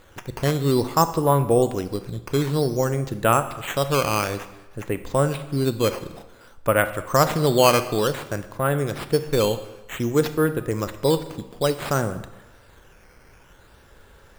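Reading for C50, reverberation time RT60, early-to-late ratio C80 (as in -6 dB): 12.5 dB, 1.1 s, 14.5 dB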